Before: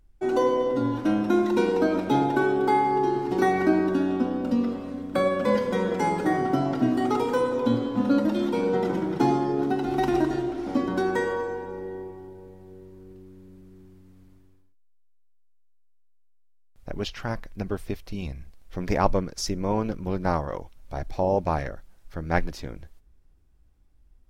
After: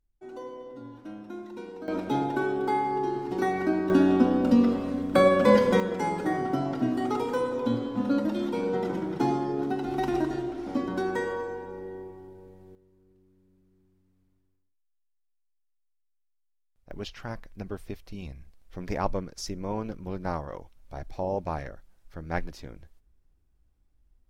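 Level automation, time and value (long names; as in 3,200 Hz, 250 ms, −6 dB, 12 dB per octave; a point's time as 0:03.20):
−18 dB
from 0:01.88 −5 dB
from 0:03.90 +4 dB
from 0:05.80 −4 dB
from 0:12.75 −16 dB
from 0:16.91 −6.5 dB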